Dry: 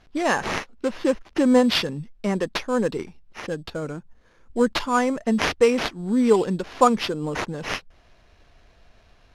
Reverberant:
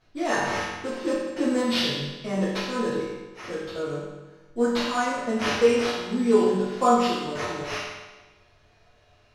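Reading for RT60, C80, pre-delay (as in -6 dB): 1.2 s, 2.0 dB, 4 ms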